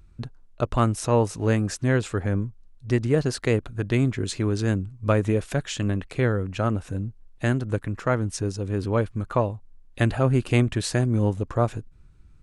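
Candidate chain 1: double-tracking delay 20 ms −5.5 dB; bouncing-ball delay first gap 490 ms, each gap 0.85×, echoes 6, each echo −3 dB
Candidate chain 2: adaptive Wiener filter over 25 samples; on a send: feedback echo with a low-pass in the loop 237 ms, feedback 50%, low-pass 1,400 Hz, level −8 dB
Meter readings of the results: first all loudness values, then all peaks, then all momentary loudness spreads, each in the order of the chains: −21.5, −25.0 LKFS; −5.0, −6.0 dBFS; 4, 9 LU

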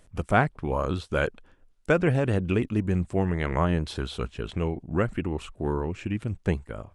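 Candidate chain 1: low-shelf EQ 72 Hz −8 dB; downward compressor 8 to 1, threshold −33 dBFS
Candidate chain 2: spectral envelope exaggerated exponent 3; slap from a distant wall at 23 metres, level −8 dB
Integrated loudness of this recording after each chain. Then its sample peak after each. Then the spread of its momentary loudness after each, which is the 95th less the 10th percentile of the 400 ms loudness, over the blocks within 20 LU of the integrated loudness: −39.0, −27.0 LKFS; −20.5, −8.5 dBFS; 2, 9 LU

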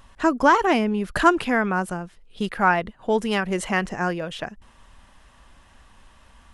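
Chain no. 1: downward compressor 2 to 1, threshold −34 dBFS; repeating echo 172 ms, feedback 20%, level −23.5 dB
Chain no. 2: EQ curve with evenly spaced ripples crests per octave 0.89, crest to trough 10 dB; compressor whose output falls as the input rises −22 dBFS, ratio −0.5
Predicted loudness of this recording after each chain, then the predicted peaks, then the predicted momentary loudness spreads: −32.0, −25.0 LKFS; −16.0, −7.5 dBFS; 9, 8 LU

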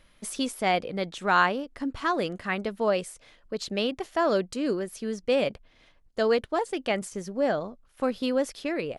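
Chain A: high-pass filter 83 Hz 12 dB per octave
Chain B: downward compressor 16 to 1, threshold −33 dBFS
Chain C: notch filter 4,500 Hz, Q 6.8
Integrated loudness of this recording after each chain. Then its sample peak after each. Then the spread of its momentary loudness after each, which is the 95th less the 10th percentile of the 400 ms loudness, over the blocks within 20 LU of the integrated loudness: −28.0, −38.5, −28.0 LKFS; −9.0, −20.5, −9.0 dBFS; 9, 5, 9 LU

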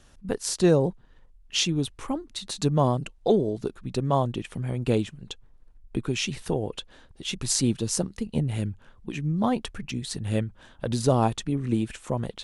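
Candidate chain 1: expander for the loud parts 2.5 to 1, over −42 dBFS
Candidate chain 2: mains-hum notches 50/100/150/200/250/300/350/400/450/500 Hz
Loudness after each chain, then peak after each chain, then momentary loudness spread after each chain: −33.0, −28.0 LKFS; −9.5, −6.5 dBFS; 20, 11 LU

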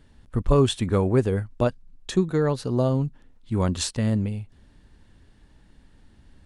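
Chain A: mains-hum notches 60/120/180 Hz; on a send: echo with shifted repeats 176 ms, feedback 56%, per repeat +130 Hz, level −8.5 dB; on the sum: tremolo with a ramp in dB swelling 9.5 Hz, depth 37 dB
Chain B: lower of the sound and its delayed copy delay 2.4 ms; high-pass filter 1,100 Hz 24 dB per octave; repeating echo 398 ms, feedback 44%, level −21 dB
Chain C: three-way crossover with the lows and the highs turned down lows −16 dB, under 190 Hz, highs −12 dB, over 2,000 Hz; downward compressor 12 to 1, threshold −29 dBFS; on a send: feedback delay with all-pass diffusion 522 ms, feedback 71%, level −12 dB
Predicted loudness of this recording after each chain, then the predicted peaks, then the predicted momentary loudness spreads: −33.0, −36.0, −36.5 LKFS; −9.0, −13.5, −18.0 dBFS; 14, 18, 16 LU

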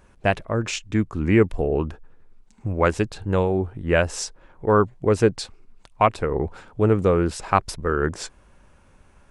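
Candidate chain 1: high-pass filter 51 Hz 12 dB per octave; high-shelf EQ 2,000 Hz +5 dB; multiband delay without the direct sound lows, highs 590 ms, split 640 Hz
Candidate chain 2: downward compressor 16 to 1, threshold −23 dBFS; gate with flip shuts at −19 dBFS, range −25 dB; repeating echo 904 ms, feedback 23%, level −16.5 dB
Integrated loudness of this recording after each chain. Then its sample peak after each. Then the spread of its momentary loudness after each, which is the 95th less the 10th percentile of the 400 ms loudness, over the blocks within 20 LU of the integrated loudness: −23.5, −39.5 LKFS; −3.0, −13.5 dBFS; 11, 16 LU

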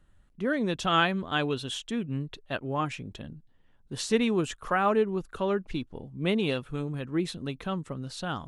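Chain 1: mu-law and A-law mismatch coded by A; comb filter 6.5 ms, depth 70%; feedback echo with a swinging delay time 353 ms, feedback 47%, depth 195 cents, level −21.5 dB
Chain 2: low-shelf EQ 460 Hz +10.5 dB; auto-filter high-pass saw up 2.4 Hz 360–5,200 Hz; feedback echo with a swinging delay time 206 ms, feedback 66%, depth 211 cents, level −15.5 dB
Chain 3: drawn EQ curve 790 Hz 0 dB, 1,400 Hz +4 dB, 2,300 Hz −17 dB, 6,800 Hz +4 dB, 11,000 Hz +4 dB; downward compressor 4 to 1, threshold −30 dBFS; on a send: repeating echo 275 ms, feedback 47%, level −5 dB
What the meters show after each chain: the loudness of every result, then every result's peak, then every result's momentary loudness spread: −29.0, −25.5, −34.0 LKFS; −10.0, −4.0, −18.5 dBFS; 12, 18, 6 LU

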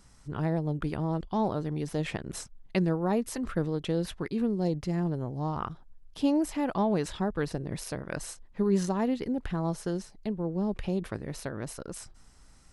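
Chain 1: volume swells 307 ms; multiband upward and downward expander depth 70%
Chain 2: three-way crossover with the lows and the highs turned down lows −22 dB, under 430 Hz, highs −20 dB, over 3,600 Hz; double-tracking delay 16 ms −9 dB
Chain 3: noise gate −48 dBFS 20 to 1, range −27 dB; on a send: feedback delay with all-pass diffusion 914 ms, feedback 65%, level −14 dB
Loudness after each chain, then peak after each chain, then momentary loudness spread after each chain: −32.0, −38.0, −31.0 LKFS; −14.0, −18.0, −13.5 dBFS; 19, 12, 11 LU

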